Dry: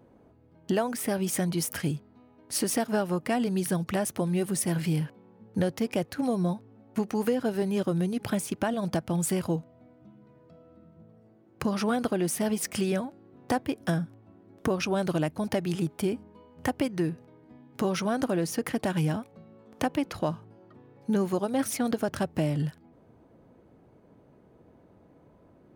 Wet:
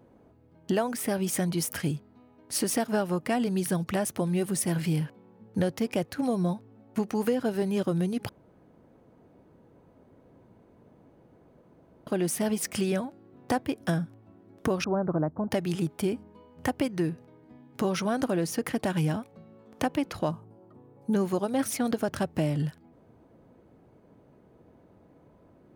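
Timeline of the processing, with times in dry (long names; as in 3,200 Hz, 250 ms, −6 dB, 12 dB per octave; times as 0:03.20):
0:08.29–0:12.07: fill with room tone
0:14.84–0:15.51: inverse Chebyshev low-pass filter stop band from 2,700 Hz
0:20.31–0:21.14: flat-topped bell 3,000 Hz −10.5 dB 2.3 octaves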